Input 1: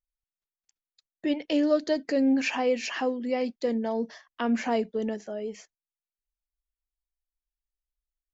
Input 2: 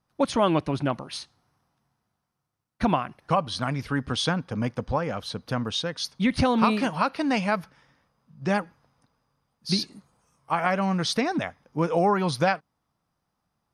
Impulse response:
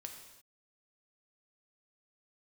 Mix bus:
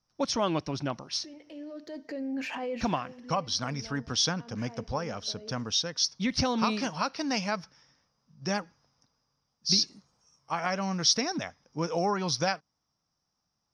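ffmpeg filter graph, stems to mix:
-filter_complex "[0:a]acompressor=threshold=0.0398:ratio=2.5,alimiter=level_in=1.5:limit=0.0631:level=0:latency=1:release=13,volume=0.668,adynamicsmooth=sensitivity=5.5:basefreq=4300,volume=0.944,asplit=2[s0][s1];[s1]volume=0.237[s2];[1:a]lowpass=f=5600:t=q:w=10,volume=0.473,asplit=2[s3][s4];[s4]apad=whole_len=367699[s5];[s0][s5]sidechaincompress=threshold=0.00355:ratio=5:attack=5.9:release=752[s6];[2:a]atrim=start_sample=2205[s7];[s2][s7]afir=irnorm=-1:irlink=0[s8];[s6][s3][s8]amix=inputs=3:normalize=0"

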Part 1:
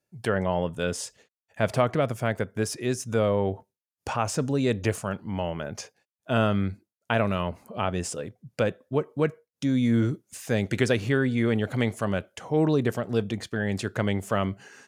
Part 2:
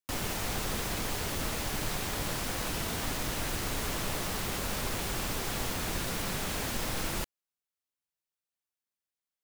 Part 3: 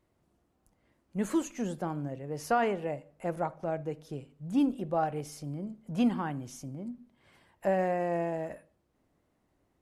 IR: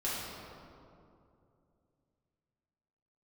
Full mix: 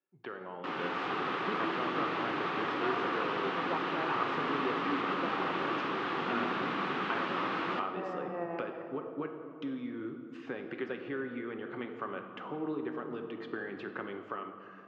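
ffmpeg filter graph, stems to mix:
-filter_complex "[0:a]acompressor=threshold=0.0316:ratio=6,volume=0.299,asplit=3[s0][s1][s2];[s1]volume=0.398[s3];[1:a]adelay=550,volume=0.596,asplit=2[s4][s5];[s5]volume=0.282[s6];[2:a]adelay=300,volume=0.316,asplit=2[s7][s8];[s8]volume=0.224[s9];[s2]apad=whole_len=446287[s10];[s7][s10]sidechaincompress=threshold=0.00158:ratio=8:attack=16:release=119[s11];[3:a]atrim=start_sample=2205[s12];[s3][s6][s9]amix=inputs=3:normalize=0[s13];[s13][s12]afir=irnorm=-1:irlink=0[s14];[s0][s4][s11][s14]amix=inputs=4:normalize=0,dynaudnorm=f=140:g=11:m=1.78,highpass=f=200:w=0.5412,highpass=f=200:w=1.3066,equalizer=f=220:t=q:w=4:g=-9,equalizer=f=330:t=q:w=4:g=4,equalizer=f=610:t=q:w=4:g=-8,equalizer=f=1200:t=q:w=4:g=8,equalizer=f=2200:t=q:w=4:g=-3,lowpass=f=2900:w=0.5412,lowpass=f=2900:w=1.3066"

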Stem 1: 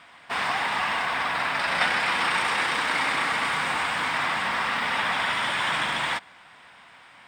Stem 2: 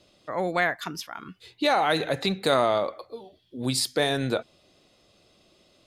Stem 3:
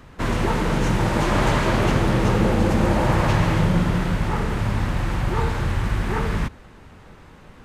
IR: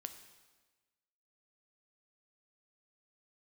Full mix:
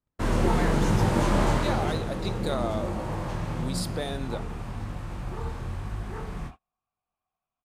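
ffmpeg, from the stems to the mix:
-filter_complex "[0:a]asplit=3[s0][s1][s2];[s0]bandpass=f=730:t=q:w=8,volume=1[s3];[s1]bandpass=f=1090:t=q:w=8,volume=0.501[s4];[s2]bandpass=f=2440:t=q:w=8,volume=0.355[s5];[s3][s4][s5]amix=inputs=3:normalize=0,adelay=2150,volume=0.224[s6];[1:a]volume=0.299,asplit=2[s7][s8];[s8]volume=0.631[s9];[2:a]flanger=delay=19:depth=7:speed=1,equalizer=f=9000:w=4.1:g=2.5,volume=0.841,afade=t=out:st=1.24:d=0.8:silence=0.316228,asplit=2[s10][s11];[s11]volume=0.531[s12];[3:a]atrim=start_sample=2205[s13];[s9][s12]amix=inputs=2:normalize=0[s14];[s14][s13]afir=irnorm=-1:irlink=0[s15];[s6][s7][s10][s15]amix=inputs=4:normalize=0,agate=range=0.0112:threshold=0.01:ratio=16:detection=peak,equalizer=f=2200:t=o:w=1.7:g=-5"

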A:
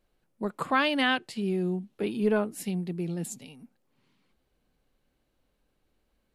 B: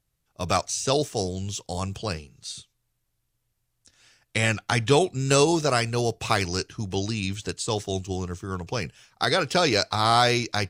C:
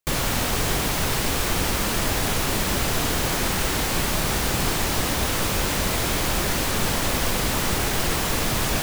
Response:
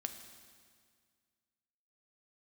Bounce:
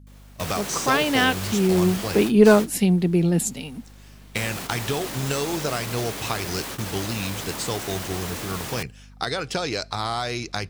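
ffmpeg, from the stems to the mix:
-filter_complex "[0:a]dynaudnorm=f=220:g=13:m=4.22,adelay=150,volume=1.19[s0];[1:a]acompressor=threshold=0.0708:ratio=10,aeval=exprs='val(0)+0.00501*(sin(2*PI*50*n/s)+sin(2*PI*2*50*n/s)/2+sin(2*PI*3*50*n/s)/3+sin(2*PI*4*50*n/s)/4+sin(2*PI*5*50*n/s)/5)':c=same,volume=1,asplit=3[s1][s2][s3];[s2]volume=0.0631[s4];[2:a]alimiter=limit=0.1:level=0:latency=1,highpass=f=140:w=0.5412,highpass=f=140:w=1.3066,asoftclip=type=tanh:threshold=0.0266,volume=1.19,asplit=2[s5][s6];[s6]volume=0.0631[s7];[s3]apad=whole_len=389262[s8];[s5][s8]sidechaingate=range=0.02:threshold=0.00891:ratio=16:detection=peak[s9];[3:a]atrim=start_sample=2205[s10];[s4][s7]amix=inputs=2:normalize=0[s11];[s11][s10]afir=irnorm=-1:irlink=0[s12];[s0][s1][s9][s12]amix=inputs=4:normalize=0"

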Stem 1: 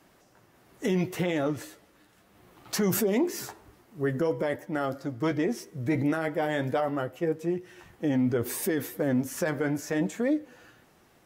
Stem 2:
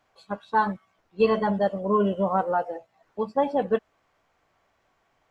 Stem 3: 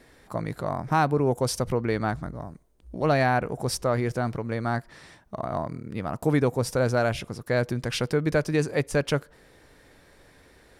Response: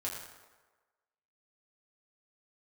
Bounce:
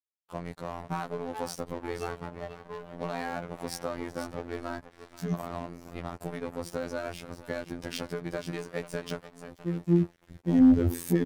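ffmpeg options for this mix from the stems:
-filter_complex "[0:a]asubboost=boost=11.5:cutoff=210,asoftclip=type=tanh:threshold=0.335,adelay=2450,volume=1.06[s0];[1:a]adelay=800,volume=0.237,asplit=2[s1][s2];[s2]volume=0.447[s3];[2:a]acompressor=threshold=0.0631:ratio=12,volume=0.944,asplit=3[s4][s5][s6];[s5]volume=0.282[s7];[s6]apad=whole_len=604290[s8];[s0][s8]sidechaincompress=threshold=0.00355:ratio=5:attack=8.5:release=479[s9];[s3][s7]amix=inputs=2:normalize=0,aecho=0:1:483:1[s10];[s9][s1][s4][s10]amix=inputs=4:normalize=0,aeval=exprs='sgn(val(0))*max(abs(val(0))-0.0126,0)':c=same,afftfilt=real='hypot(re,im)*cos(PI*b)':imag='0':win_size=2048:overlap=0.75,volume=3.98,asoftclip=hard,volume=0.251"

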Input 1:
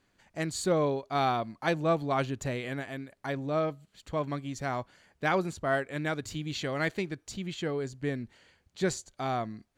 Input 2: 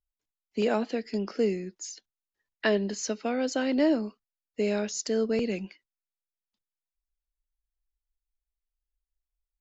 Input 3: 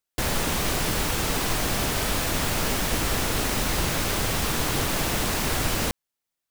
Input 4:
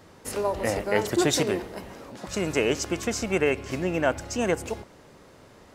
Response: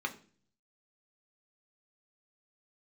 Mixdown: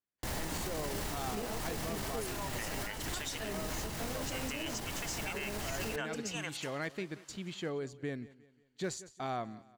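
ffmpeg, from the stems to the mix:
-filter_complex "[0:a]lowshelf=f=74:g=-10,aeval=exprs='0.106*(abs(mod(val(0)/0.106+3,4)-2)-1)':c=same,volume=0.596,asplit=2[s0][s1];[s1]volume=0.0944[s2];[1:a]flanger=delay=17.5:depth=7.2:speed=2.2,adelay=750,volume=0.376[s3];[2:a]adelay=50,volume=0.562,asplit=2[s4][s5];[s5]volume=0.1[s6];[3:a]highpass=1200,equalizer=f=3000:w=7.8:g=6,adelay=1950,volume=0.631[s7];[s0][s4]amix=inputs=2:normalize=0,agate=range=0.0708:threshold=0.00251:ratio=16:detection=peak,alimiter=level_in=1.41:limit=0.0631:level=0:latency=1,volume=0.708,volume=1[s8];[4:a]atrim=start_sample=2205[s9];[s6][s9]afir=irnorm=-1:irlink=0[s10];[s2]aecho=0:1:179|358|537|716|895|1074:1|0.42|0.176|0.0741|0.0311|0.0131[s11];[s3][s7][s8][s10][s11]amix=inputs=5:normalize=0,alimiter=level_in=1.5:limit=0.0631:level=0:latency=1:release=245,volume=0.668"

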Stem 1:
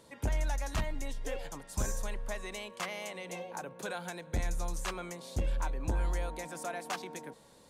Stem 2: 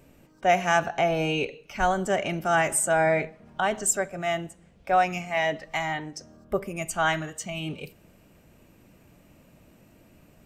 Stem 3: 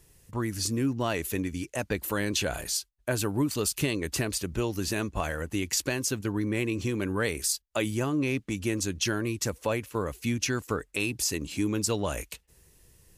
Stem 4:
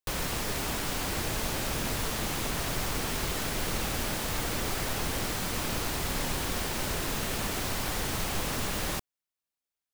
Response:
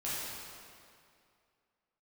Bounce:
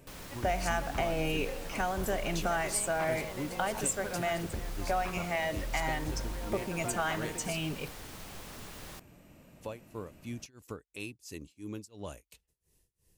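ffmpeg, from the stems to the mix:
-filter_complex "[0:a]acompressor=threshold=0.0178:ratio=6,lowpass=2100,adelay=200,volume=1.06[s0];[1:a]acompressor=threshold=0.0355:ratio=4,volume=0.891[s1];[2:a]tremolo=f=2.9:d=0.96,equalizer=f=1500:t=o:w=1.3:g=-4.5,volume=0.316,asplit=3[s2][s3][s4];[s2]atrim=end=7.74,asetpts=PTS-STARTPTS,afade=t=out:st=7.736:d=0.004:c=hsin[s5];[s3]atrim=start=7.74:end=9.61,asetpts=PTS-STARTPTS,volume=0[s6];[s4]atrim=start=9.61,asetpts=PTS-STARTPTS,afade=t=in:d=0.004:c=hsin[s7];[s5][s6][s7]concat=n=3:v=0:a=1[s8];[3:a]volume=0.188[s9];[s0][s1][s8][s9]amix=inputs=4:normalize=0"

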